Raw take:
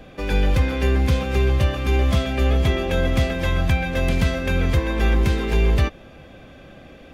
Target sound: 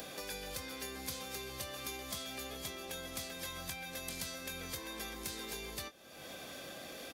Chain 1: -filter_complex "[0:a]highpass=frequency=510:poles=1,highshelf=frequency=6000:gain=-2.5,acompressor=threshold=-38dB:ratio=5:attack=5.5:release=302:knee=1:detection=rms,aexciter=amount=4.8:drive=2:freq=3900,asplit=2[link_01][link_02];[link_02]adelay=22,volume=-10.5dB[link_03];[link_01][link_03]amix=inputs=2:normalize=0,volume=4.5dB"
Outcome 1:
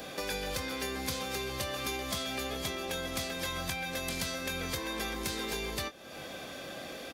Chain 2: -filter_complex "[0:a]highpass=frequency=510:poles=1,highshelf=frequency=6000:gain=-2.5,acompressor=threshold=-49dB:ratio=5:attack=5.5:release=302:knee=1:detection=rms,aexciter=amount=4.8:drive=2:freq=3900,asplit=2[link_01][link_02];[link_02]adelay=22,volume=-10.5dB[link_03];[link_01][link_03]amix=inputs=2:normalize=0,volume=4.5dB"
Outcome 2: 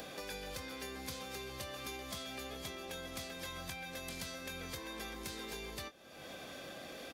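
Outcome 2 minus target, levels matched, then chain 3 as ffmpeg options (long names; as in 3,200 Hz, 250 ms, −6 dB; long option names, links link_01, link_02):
8,000 Hz band −3.0 dB
-filter_complex "[0:a]highpass=frequency=510:poles=1,highshelf=frequency=6000:gain=5.5,acompressor=threshold=-49dB:ratio=5:attack=5.5:release=302:knee=1:detection=rms,aexciter=amount=4.8:drive=2:freq=3900,asplit=2[link_01][link_02];[link_02]adelay=22,volume=-10.5dB[link_03];[link_01][link_03]amix=inputs=2:normalize=0,volume=4.5dB"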